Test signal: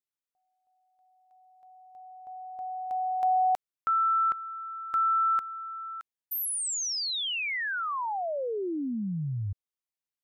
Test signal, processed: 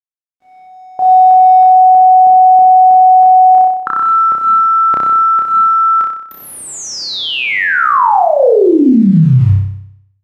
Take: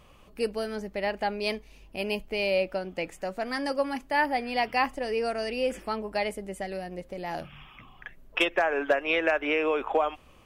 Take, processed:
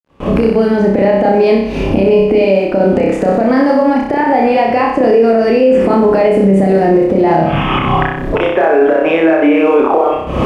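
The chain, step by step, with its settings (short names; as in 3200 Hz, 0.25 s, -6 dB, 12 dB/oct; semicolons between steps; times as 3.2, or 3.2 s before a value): recorder AGC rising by 73 dB/s, up to +33 dB; gate with hold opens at -33 dBFS, hold 48 ms, range -25 dB; compressor 8:1, threshold -26 dBFS; companded quantiser 6-bit; band-pass 260 Hz, Q 0.52; flutter echo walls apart 5.3 m, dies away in 0.72 s; maximiser +23.5 dB; gain -1 dB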